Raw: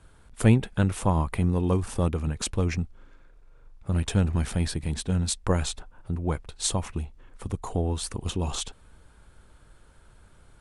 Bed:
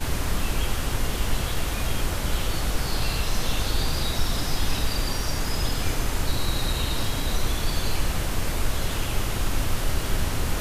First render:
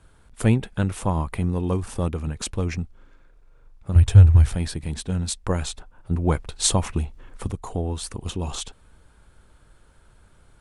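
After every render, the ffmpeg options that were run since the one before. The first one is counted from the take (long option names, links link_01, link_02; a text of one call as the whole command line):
ffmpeg -i in.wav -filter_complex "[0:a]asettb=1/sr,asplit=3[link_01][link_02][link_03];[link_01]atrim=end=3.954[link_04];[link_02]atrim=start=3.95:end=4.55,asetpts=PTS-STARTPTS,afade=type=in:duration=0.004:curve=qsin,afade=type=out:start_time=0.596:duration=0.004:curve=qsin,lowshelf=frequency=140:width_type=q:width=3:gain=9[link_05];[link_03]atrim=start=4.546[link_06];[link_04][link_05]acrossfade=duration=0.004:curve1=hsin:curve2=qsin[link_07];[link_07][link_06]acrossfade=duration=0.004:curve1=qsin:curve2=hsin,asplit=3[link_08][link_09][link_10];[link_08]atrim=end=6.112[link_11];[link_09]atrim=start=6.108:end=7.512,asetpts=PTS-STARTPTS,volume=6.5dB[link_12];[link_10]atrim=start=7.508[link_13];[link_11][link_12]acrossfade=duration=0.004:curve1=hsin:curve2=hsin[link_14];[link_14][link_13]acrossfade=duration=0.004:curve1=hsin:curve2=hsin" out.wav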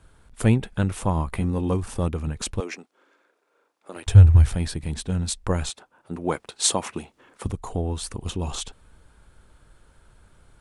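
ffmpeg -i in.wav -filter_complex "[0:a]asettb=1/sr,asplit=3[link_01][link_02][link_03];[link_01]atrim=end=1.264[link_04];[link_02]atrim=start=1.26:end=1.74,asetpts=PTS-STARTPTS,afade=type=in:duration=0.004:curve=qsin,afade=type=out:start_time=0.476:duration=0.004:curve=qsin,asplit=2[link_05][link_06];[link_06]adelay=15,volume=-8dB[link_07];[link_05][link_07]amix=inputs=2:normalize=0,atrim=end_sample=21168[link_08];[link_03]atrim=start=1.736[link_09];[link_04][link_08]acrossfade=duration=0.004:curve1=hsin:curve2=qsin[link_10];[link_10][link_09]acrossfade=duration=0.004:curve1=qsin:curve2=hsin,asettb=1/sr,asplit=3[link_11][link_12][link_13];[link_11]atrim=end=2.604[link_14];[link_12]atrim=start=2.6:end=4.07,asetpts=PTS-STARTPTS,afade=type=in:duration=0.004:curve=qsin,afade=type=out:start_time=1.466:duration=0.004:curve=qsin,highpass=frequency=320:width=0.5412,highpass=frequency=320:width=1.3066[link_15];[link_13]atrim=start=4.066[link_16];[link_14][link_15]acrossfade=duration=0.004:curve1=hsin:curve2=qsin[link_17];[link_17][link_16]acrossfade=duration=0.004:curve1=qsin:curve2=hsin,asettb=1/sr,asplit=3[link_18][link_19][link_20];[link_18]atrim=end=5.694[link_21];[link_19]atrim=start=5.69:end=7.45,asetpts=PTS-STARTPTS,afade=type=in:duration=0.004:curve=qsin,afade=type=out:start_time=1.756:duration=0.004:curve=qsin,highpass=260[link_22];[link_20]atrim=start=7.446[link_23];[link_21][link_22]acrossfade=duration=0.004:curve1=hsin:curve2=qsin[link_24];[link_24][link_23]acrossfade=duration=0.004:curve1=qsin:curve2=hsin" out.wav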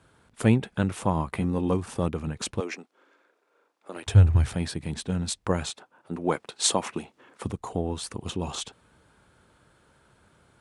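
ffmpeg -i in.wav -af "highpass=120,highshelf=frequency=8400:gain=-7" out.wav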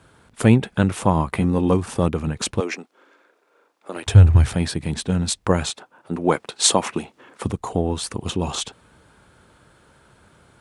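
ffmpeg -i in.wav -af "volume=7dB,alimiter=limit=-2dB:level=0:latency=1" out.wav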